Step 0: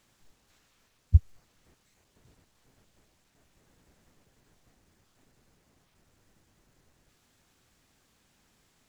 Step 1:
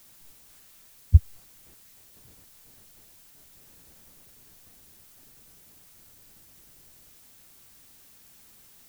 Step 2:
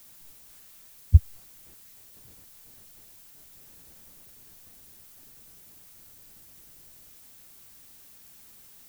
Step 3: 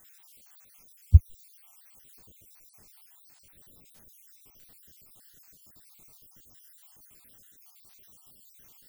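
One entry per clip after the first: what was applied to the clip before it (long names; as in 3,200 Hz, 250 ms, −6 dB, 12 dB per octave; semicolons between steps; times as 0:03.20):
background noise blue −59 dBFS; level +4 dB
high-shelf EQ 10,000 Hz +3.5 dB
time-frequency cells dropped at random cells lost 62%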